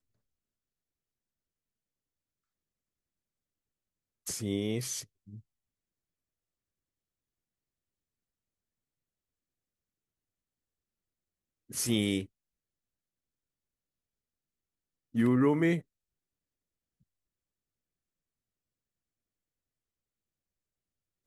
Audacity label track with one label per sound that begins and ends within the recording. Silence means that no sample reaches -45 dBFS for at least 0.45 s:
4.270000	5.390000	sound
11.700000	12.260000	sound
15.150000	15.810000	sound